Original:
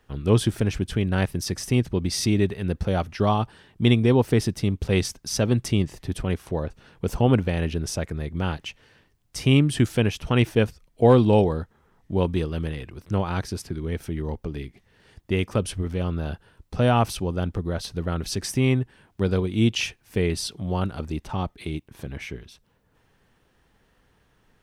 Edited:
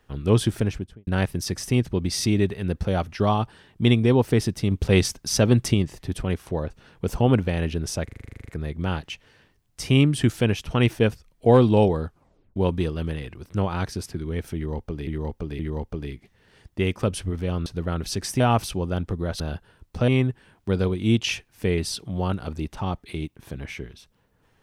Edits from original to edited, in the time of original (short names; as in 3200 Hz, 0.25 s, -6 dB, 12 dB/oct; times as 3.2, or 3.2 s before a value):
0.58–1.07 studio fade out
4.71–5.74 gain +3.5 dB
8.04 stutter 0.04 s, 12 plays
11.61 tape stop 0.51 s
14.11–14.63 loop, 3 plays
16.18–16.86 swap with 17.86–18.6